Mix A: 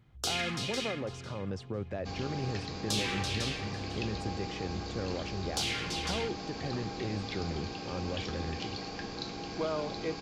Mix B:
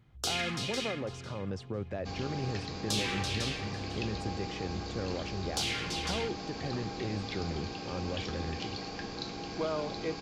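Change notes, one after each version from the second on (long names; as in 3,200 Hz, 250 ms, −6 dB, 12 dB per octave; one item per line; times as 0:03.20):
nothing changed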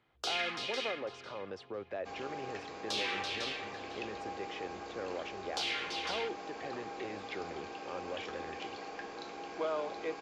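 second sound: remove low-pass with resonance 4,600 Hz, resonance Q 2.9
master: add three-way crossover with the lows and the highs turned down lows −21 dB, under 340 Hz, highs −17 dB, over 5,000 Hz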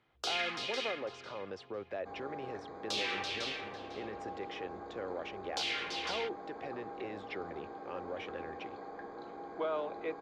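second sound: add moving average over 16 samples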